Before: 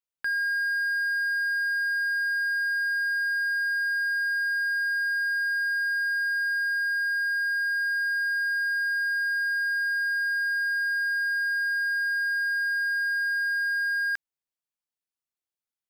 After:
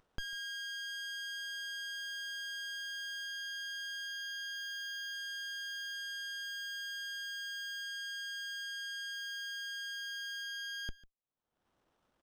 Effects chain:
drawn EQ curve 2,500 Hz 0 dB, 7,400 Hz −13 dB, 11,000 Hz −29 dB
upward compression, threshold −44 dBFS
tempo change 1.3×
single-tap delay 147 ms −20.5 dB
windowed peak hold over 17 samples
level −5.5 dB

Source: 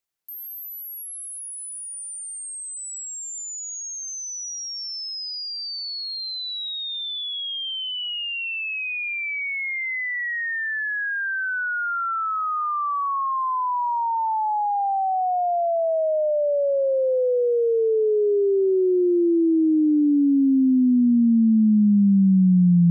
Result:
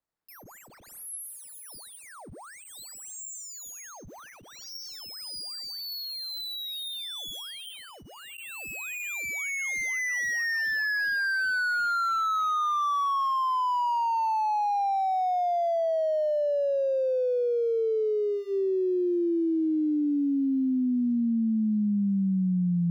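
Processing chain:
running median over 15 samples
notch filter 400 Hz, Q 12
downward compressor 6 to 1, threshold −27 dBFS, peak gain reduction 11.5 dB
level +2 dB

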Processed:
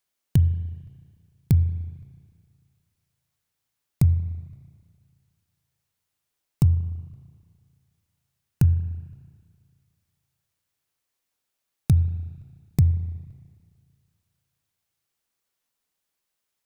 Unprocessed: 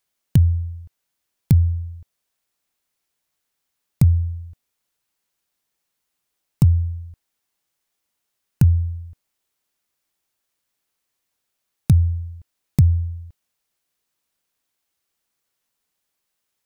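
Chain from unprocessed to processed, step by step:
dynamic equaliser 260 Hz, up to −3 dB, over −27 dBFS, Q 1.3
spring reverb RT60 2 s, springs 30/37 ms, chirp 75 ms, DRR 13 dB
level −3.5 dB

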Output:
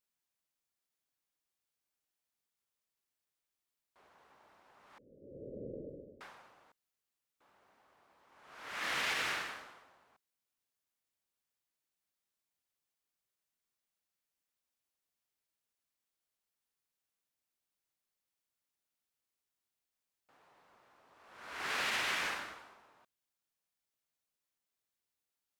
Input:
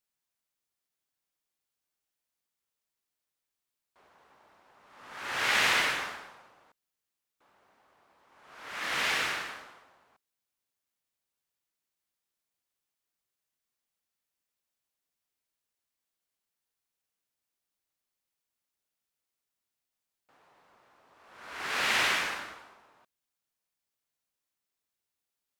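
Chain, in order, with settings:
0:04.98–0:06.21: Butterworth low-pass 560 Hz 96 dB per octave
brickwall limiter −22.5 dBFS, peak gain reduction 8 dB
level −3 dB

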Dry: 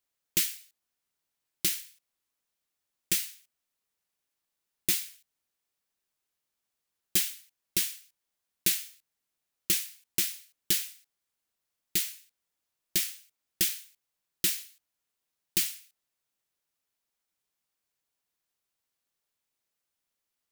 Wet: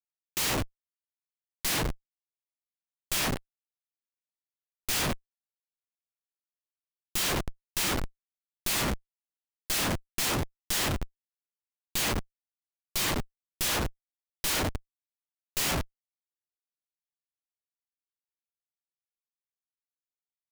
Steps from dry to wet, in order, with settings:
echo with shifted repeats 103 ms, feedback 54%, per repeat −42 Hz, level −12 dB
coupled-rooms reverb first 0.39 s, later 3.7 s, from −21 dB, DRR 2 dB
comparator with hysteresis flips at −30.5 dBFS
level +7 dB

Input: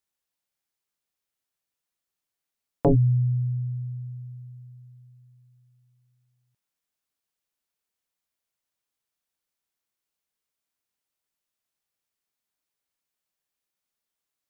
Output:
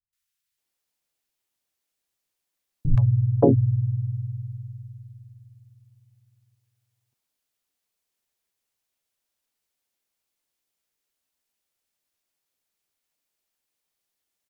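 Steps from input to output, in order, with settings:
three-band delay without the direct sound lows, highs, mids 130/580 ms, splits 150/1,300 Hz
pitch-shifted copies added −3 semitones −4 dB
level +3 dB

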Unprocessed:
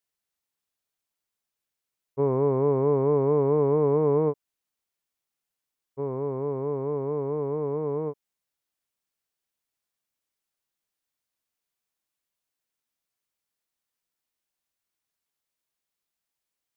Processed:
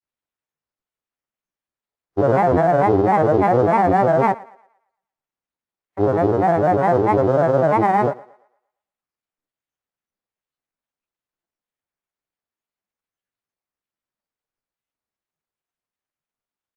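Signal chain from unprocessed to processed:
running median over 15 samples
in parallel at 0 dB: compressor whose output falls as the input rises −27 dBFS, ratio −0.5
on the sum: granular cloud 100 ms, grains 20 per second, spray 13 ms, pitch spread up and down by 7 semitones
noise reduction from a noise print of the clip's start 12 dB
formants moved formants +6 semitones
on a send: feedback echo with a high-pass in the loop 115 ms, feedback 40%, high-pass 340 Hz, level −20 dB
on the sum: level +6 dB

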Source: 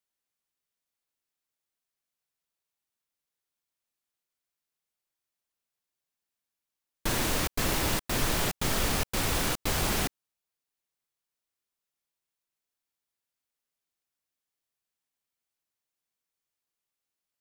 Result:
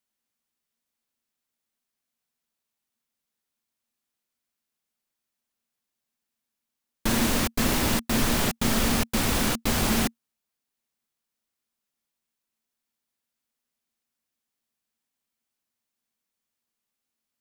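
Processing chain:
parametric band 230 Hz +13 dB 0.27 octaves
level +3 dB

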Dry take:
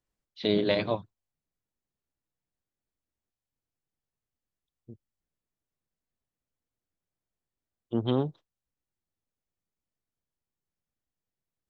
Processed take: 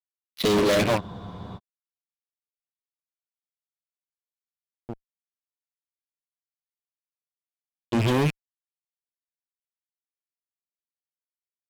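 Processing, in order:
loose part that buzzes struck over −39 dBFS, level −33 dBFS
fuzz pedal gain 35 dB, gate −44 dBFS
frozen spectrum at 0:01.02, 0.55 s
level −5 dB

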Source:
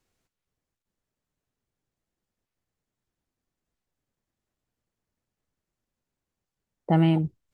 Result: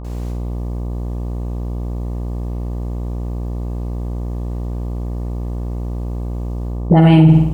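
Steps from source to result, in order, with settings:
reversed playback
downward compressor, threshold −32 dBFS, peak gain reduction 15 dB
reversed playback
all-pass dispersion highs, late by 45 ms, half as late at 370 Hz
hum with harmonics 60 Hz, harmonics 20, −61 dBFS −7 dB per octave
flutter between parallel walls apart 8.6 metres, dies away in 0.57 s
boost into a limiter +32.5 dB
level −1 dB

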